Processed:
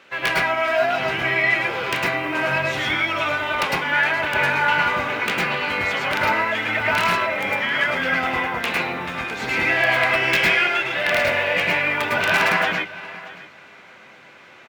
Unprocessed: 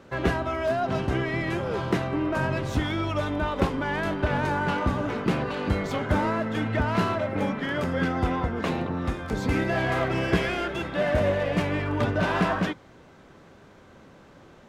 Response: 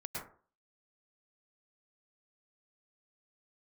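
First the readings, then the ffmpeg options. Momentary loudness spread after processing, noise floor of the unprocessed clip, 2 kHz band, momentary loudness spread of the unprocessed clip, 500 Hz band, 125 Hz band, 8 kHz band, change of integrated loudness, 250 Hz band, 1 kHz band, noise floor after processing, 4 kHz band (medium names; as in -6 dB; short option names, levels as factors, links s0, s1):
6 LU, -52 dBFS, +13.0 dB, 4 LU, +2.0 dB, -7.0 dB, +9.0 dB, +7.0 dB, -5.0 dB, +6.5 dB, -46 dBFS, +12.0 dB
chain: -filter_complex "[0:a]acrusher=bits=9:mode=log:mix=0:aa=0.000001,highpass=f=830:p=1,aecho=1:1:627|1254:0.133|0.02,aeval=exprs='(mod(8.91*val(0)+1,2)-1)/8.91':c=same,equalizer=f=2500:t=o:w=1.3:g=13[s0];[1:a]atrim=start_sample=2205,afade=t=out:st=0.18:d=0.01,atrim=end_sample=8379[s1];[s0][s1]afir=irnorm=-1:irlink=0,volume=2"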